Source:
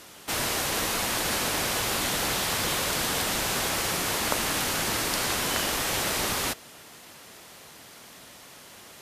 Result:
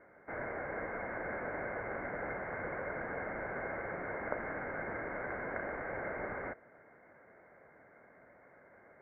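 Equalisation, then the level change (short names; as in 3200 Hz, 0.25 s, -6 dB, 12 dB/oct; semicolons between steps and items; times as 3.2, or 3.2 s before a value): rippled Chebyshev low-pass 2200 Hz, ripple 9 dB; air absorption 70 m; -4.0 dB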